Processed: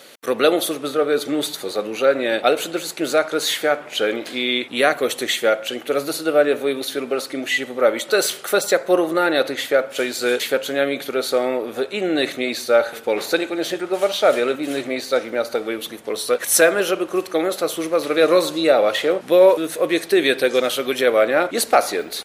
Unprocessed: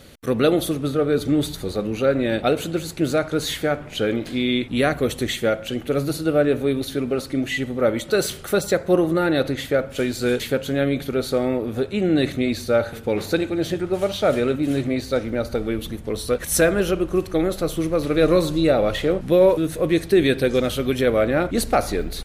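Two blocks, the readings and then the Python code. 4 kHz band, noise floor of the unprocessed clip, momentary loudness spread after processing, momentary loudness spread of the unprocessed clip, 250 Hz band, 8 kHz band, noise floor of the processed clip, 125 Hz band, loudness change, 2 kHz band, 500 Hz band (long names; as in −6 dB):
+5.5 dB, −37 dBFS, 8 LU, 6 LU, −3.5 dB, +5.5 dB, −38 dBFS, −15.0 dB, +2.0 dB, +5.5 dB, +2.5 dB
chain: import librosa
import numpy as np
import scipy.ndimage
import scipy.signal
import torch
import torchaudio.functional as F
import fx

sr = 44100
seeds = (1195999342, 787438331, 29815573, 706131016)

y = scipy.signal.sosfilt(scipy.signal.butter(2, 480.0, 'highpass', fs=sr, output='sos'), x)
y = F.gain(torch.from_numpy(y), 5.5).numpy()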